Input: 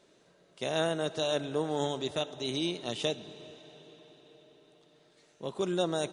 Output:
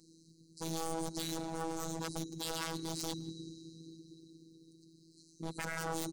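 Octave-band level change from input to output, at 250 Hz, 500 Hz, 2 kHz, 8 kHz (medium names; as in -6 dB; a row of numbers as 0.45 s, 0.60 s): -5.0 dB, -12.0 dB, -3.5 dB, +2.5 dB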